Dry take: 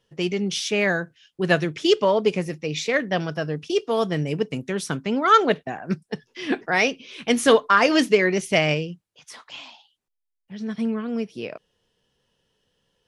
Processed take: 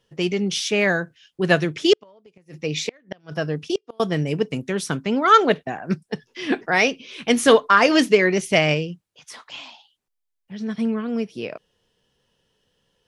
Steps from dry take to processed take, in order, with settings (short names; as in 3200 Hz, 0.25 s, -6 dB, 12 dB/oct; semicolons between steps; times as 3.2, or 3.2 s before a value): 1.93–4 flipped gate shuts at -14 dBFS, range -34 dB; gain +2 dB